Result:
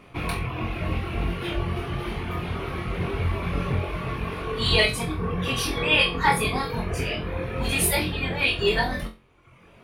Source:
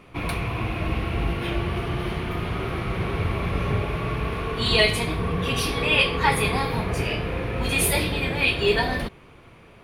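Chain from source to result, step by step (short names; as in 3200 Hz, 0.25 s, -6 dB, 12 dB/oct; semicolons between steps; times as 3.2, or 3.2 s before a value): reverb removal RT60 1.1 s; flutter echo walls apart 3.9 m, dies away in 0.27 s; gain -1 dB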